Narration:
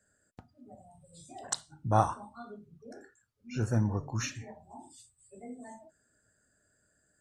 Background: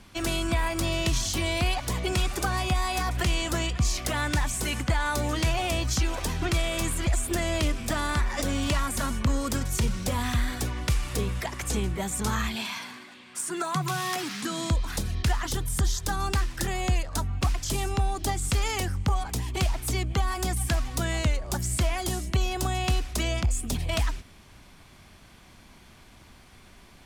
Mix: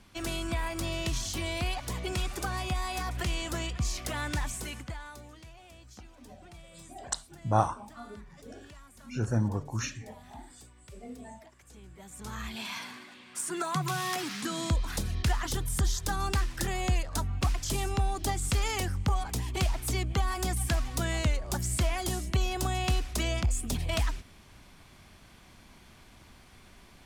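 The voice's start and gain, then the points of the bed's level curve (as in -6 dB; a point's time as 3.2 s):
5.60 s, +0.5 dB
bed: 4.5 s -6 dB
5.46 s -25.5 dB
11.72 s -25.5 dB
12.77 s -2.5 dB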